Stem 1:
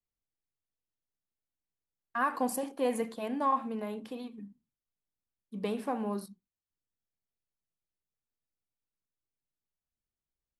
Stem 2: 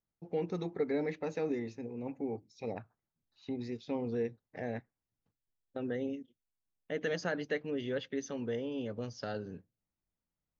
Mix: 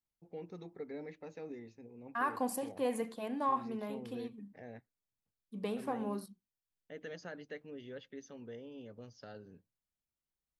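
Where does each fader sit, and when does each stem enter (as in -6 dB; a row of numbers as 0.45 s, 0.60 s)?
-4.0 dB, -11.5 dB; 0.00 s, 0.00 s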